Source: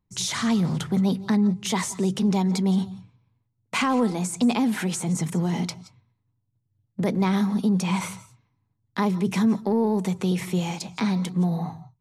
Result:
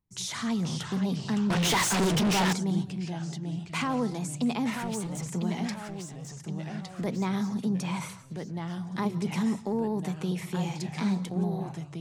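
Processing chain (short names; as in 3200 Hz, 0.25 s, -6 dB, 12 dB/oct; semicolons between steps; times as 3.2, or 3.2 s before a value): 4.7–5.3 hard clip -27.5 dBFS, distortion -21 dB; echoes that change speed 0.464 s, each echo -2 st, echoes 3, each echo -6 dB; 1.5–2.53 overdrive pedal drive 32 dB, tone 6200 Hz, clips at -11 dBFS; gain -7 dB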